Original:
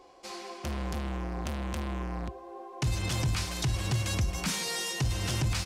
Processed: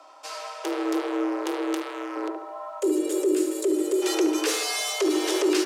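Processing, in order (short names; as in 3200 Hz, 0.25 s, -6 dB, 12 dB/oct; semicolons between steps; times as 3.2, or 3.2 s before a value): 1.75–2.16 low shelf 490 Hz -9 dB; 2.8–4.02 spectral gain 350–6300 Hz -13 dB; frequency shift +260 Hz; dark delay 71 ms, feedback 46%, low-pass 1800 Hz, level -5.5 dB; gain +5 dB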